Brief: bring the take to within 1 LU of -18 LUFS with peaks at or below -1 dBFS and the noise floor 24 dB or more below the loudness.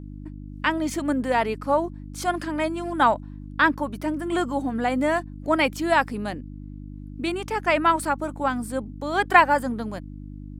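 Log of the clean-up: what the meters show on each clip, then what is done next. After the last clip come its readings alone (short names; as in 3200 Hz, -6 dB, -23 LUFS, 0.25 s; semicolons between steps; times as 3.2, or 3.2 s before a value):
hum 50 Hz; harmonics up to 300 Hz; hum level -35 dBFS; loudness -24.0 LUFS; peak -2.0 dBFS; loudness target -18.0 LUFS
-> de-hum 50 Hz, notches 6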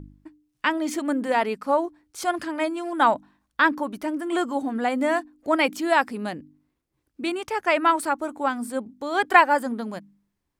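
hum none; loudness -24.0 LUFS; peak -2.0 dBFS; loudness target -18.0 LUFS
-> gain +6 dB; limiter -1 dBFS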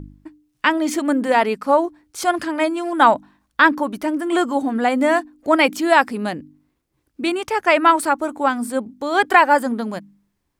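loudness -18.5 LUFS; peak -1.0 dBFS; noise floor -72 dBFS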